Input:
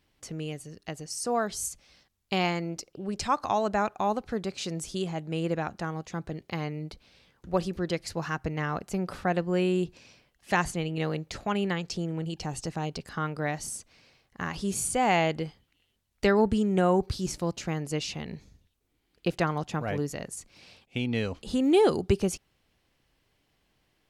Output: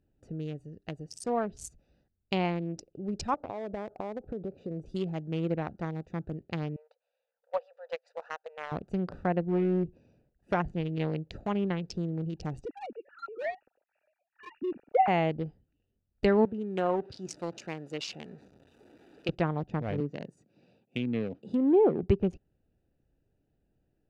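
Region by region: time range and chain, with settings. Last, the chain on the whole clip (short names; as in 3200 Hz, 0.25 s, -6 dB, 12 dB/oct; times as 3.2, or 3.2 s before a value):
3.34–4.86 LPF 1000 Hz 6 dB/oct + bell 540 Hz +8.5 dB 1.3 oct + compressor, threshold -30 dBFS
6.76–8.72 G.711 law mismatch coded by A + brick-wall FIR high-pass 460 Hz + air absorption 66 m
9.43–10.6 bell 3300 Hz -5 dB 1.5 oct + Doppler distortion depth 0.3 ms
12.65–15.08 sine-wave speech + brick-wall FIR low-pass 2900 Hz + phaser 1.4 Hz, delay 4.4 ms, feedback 24%
16.45–19.29 zero-crossing step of -38 dBFS + weighting filter A
20–22.03 HPF 130 Hz 24 dB/oct + treble ducked by the level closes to 1000 Hz, closed at -22 dBFS
whole clip: Wiener smoothing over 41 samples; treble ducked by the level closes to 2200 Hz, closed at -24 dBFS; dynamic EQ 1400 Hz, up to -5 dB, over -40 dBFS, Q 1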